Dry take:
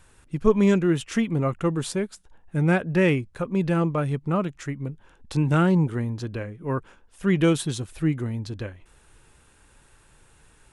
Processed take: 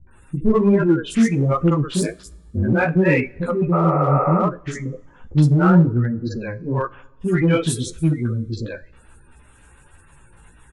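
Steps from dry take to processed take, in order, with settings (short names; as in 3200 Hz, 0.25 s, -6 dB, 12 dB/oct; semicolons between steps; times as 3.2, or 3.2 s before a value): spectral gate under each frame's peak -25 dB strong; three bands offset in time lows, mids, highs 70/110 ms, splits 430/4400 Hz; 2.01–2.73 ring modulator 52 Hz; chorus voices 2, 1.2 Hz, delay 15 ms, depth 3 ms; in parallel at -9 dB: hard clip -26 dBFS, distortion -8 dB; 3.76–4.37 on the sum: spectral repair 400–2700 Hz after; two-slope reverb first 0.34 s, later 1.8 s, from -18 dB, DRR 15 dB; gain +7.5 dB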